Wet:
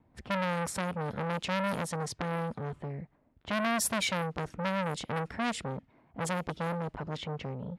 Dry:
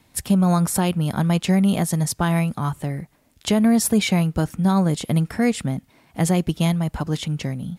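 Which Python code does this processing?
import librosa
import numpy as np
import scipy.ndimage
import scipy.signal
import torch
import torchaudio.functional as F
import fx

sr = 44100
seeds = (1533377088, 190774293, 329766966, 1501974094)

y = fx.env_lowpass(x, sr, base_hz=1000.0, full_db=-14.0)
y = fx.transformer_sat(y, sr, knee_hz=1700.0)
y = y * 10.0 ** (-6.5 / 20.0)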